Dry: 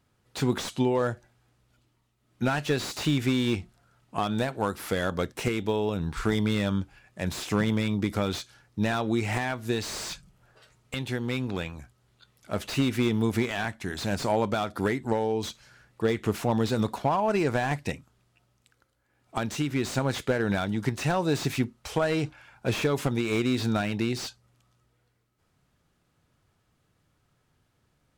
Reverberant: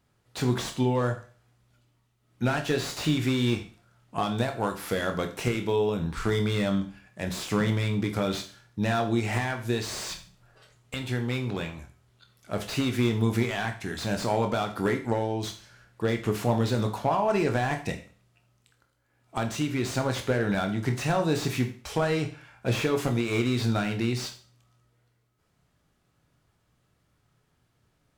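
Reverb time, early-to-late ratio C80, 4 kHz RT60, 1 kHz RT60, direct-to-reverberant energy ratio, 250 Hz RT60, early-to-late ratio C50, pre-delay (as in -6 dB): 0.40 s, 15.5 dB, 0.40 s, 0.40 s, 5.0 dB, 0.45 s, 11.0 dB, 17 ms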